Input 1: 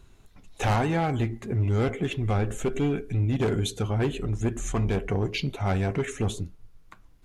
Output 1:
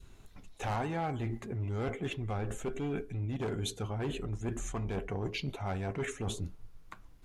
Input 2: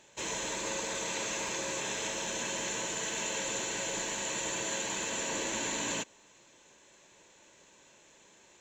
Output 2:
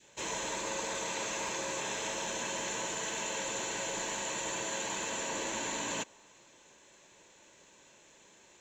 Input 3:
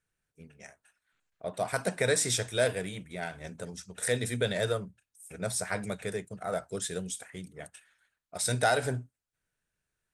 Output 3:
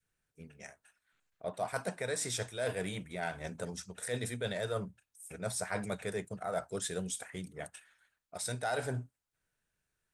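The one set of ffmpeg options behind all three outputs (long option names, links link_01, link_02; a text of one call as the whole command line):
ffmpeg -i in.wav -af "areverse,acompressor=threshold=-33dB:ratio=10,areverse,adynamicequalizer=threshold=0.00355:dfrequency=900:dqfactor=1:tfrequency=900:tqfactor=1:attack=5:release=100:ratio=0.375:range=2:mode=boostabove:tftype=bell" out.wav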